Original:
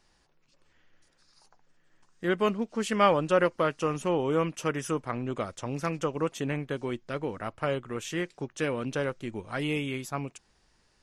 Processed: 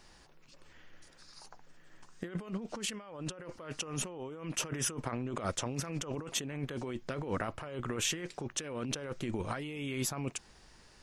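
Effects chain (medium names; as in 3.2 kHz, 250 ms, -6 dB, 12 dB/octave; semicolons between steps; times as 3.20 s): compressor with a negative ratio -39 dBFS, ratio -1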